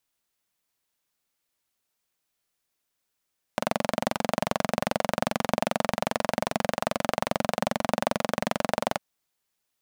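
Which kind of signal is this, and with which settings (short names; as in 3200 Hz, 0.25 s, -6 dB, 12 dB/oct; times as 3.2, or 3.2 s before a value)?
single-cylinder engine model, steady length 5.40 s, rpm 2700, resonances 220/600 Hz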